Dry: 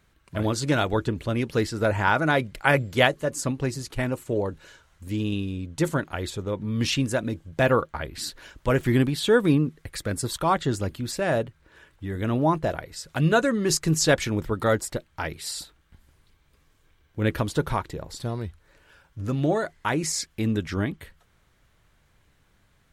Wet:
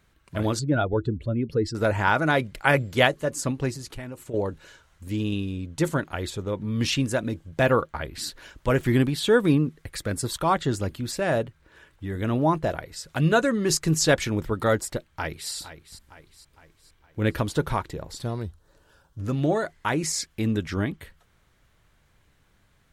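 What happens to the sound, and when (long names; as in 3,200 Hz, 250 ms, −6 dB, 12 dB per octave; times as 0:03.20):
0:00.59–0:01.75: expanding power law on the bin magnitudes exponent 1.8
0:03.71–0:04.34: downward compressor 5 to 1, threshold −33 dBFS
0:15.10–0:15.52: delay throw 460 ms, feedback 50%, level −13 dB
0:18.43–0:19.19: parametric band 2,200 Hz −14.5 dB 0.78 octaves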